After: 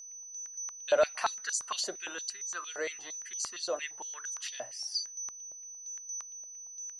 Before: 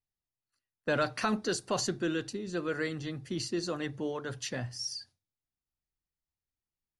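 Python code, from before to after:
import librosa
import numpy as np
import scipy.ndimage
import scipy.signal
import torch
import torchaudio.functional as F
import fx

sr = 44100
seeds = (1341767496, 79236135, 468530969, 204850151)

y = x + 10.0 ** (-41.0 / 20.0) * np.sin(2.0 * np.pi * 6000.0 * np.arange(len(x)) / sr)
y = fx.filter_held_highpass(y, sr, hz=8.7, low_hz=590.0, high_hz=6500.0)
y = y * librosa.db_to_amplitude(-3.5)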